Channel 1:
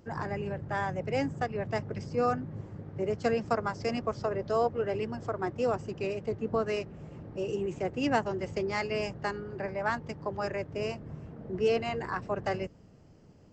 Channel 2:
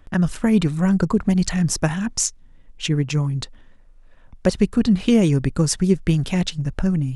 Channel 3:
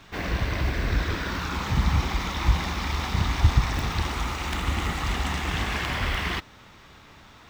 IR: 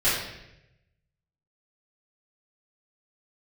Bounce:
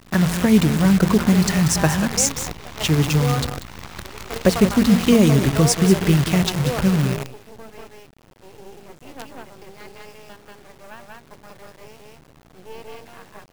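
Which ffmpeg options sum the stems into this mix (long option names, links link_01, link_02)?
-filter_complex "[0:a]adelay=1050,volume=1dB,asplit=2[link_01][link_02];[link_02]volume=-10dB[link_03];[1:a]aeval=exprs='val(0)+0.00447*(sin(2*PI*60*n/s)+sin(2*PI*2*60*n/s)/2+sin(2*PI*3*60*n/s)/3+sin(2*PI*4*60*n/s)/4+sin(2*PI*5*60*n/s)/5)':channel_layout=same,volume=2.5dB,asplit=3[link_04][link_05][link_06];[link_05]volume=-11.5dB[link_07];[2:a]aeval=exprs='0.473*(cos(1*acos(clip(val(0)/0.473,-1,1)))-cos(1*PI/2))+0.15*(cos(6*acos(clip(val(0)/0.473,-1,1)))-cos(6*PI/2))':channel_layout=same,acompressor=threshold=-24dB:ratio=4,volume=-3.5dB[link_08];[link_06]apad=whole_len=642751[link_09];[link_01][link_09]sidechaingate=range=-9dB:threshold=-37dB:ratio=16:detection=peak[link_10];[link_03][link_07]amix=inputs=2:normalize=0,aecho=0:1:188:1[link_11];[link_10][link_04][link_08][link_11]amix=inputs=4:normalize=0,highpass=frequency=40:width=0.5412,highpass=frequency=40:width=1.3066,bandreject=frequency=57.37:width_type=h:width=4,bandreject=frequency=114.74:width_type=h:width=4,bandreject=frequency=172.11:width_type=h:width=4,bandreject=frequency=229.48:width_type=h:width=4,bandreject=frequency=286.85:width_type=h:width=4,bandreject=frequency=344.22:width_type=h:width=4,acrusher=bits=5:dc=4:mix=0:aa=0.000001"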